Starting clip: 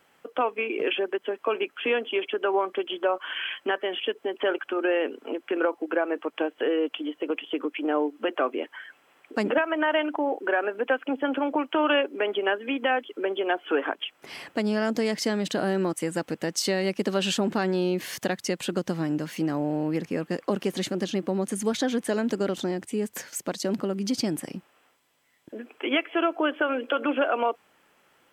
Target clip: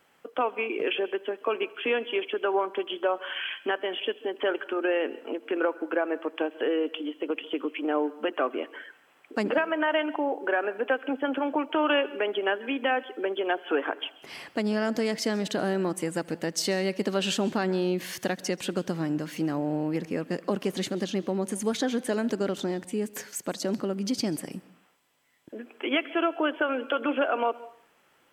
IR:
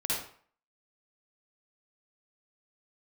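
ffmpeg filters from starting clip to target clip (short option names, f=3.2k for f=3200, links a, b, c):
-filter_complex "[0:a]asplit=2[a][b];[1:a]atrim=start_sample=2205,adelay=80[c];[b][c]afir=irnorm=-1:irlink=0,volume=-25dB[d];[a][d]amix=inputs=2:normalize=0,volume=-1.5dB"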